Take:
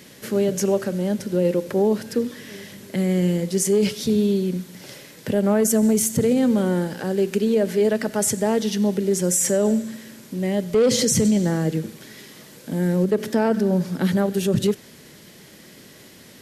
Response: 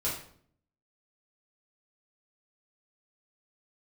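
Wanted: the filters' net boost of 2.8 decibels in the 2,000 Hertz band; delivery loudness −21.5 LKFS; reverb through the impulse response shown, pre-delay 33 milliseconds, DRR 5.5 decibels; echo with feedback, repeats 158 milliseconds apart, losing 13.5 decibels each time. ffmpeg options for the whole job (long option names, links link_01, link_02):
-filter_complex "[0:a]equalizer=frequency=2000:width_type=o:gain=3.5,aecho=1:1:158|316:0.211|0.0444,asplit=2[link_01][link_02];[1:a]atrim=start_sample=2205,adelay=33[link_03];[link_02][link_03]afir=irnorm=-1:irlink=0,volume=-11.5dB[link_04];[link_01][link_04]amix=inputs=2:normalize=0,volume=-2dB"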